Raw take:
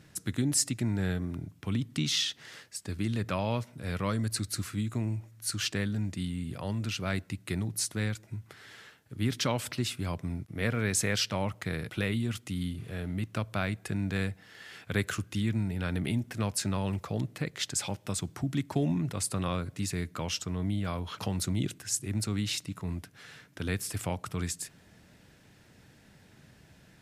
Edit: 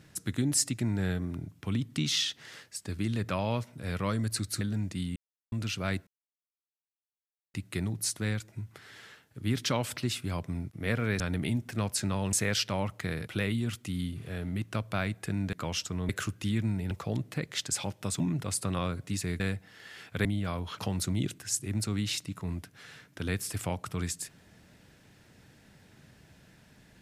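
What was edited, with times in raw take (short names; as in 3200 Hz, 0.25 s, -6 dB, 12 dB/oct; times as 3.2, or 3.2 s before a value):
4.61–5.83 cut
6.38–6.74 mute
7.29 insert silence 1.47 s
14.15–15 swap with 20.09–20.65
15.82–16.95 move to 10.95
18.24–18.89 cut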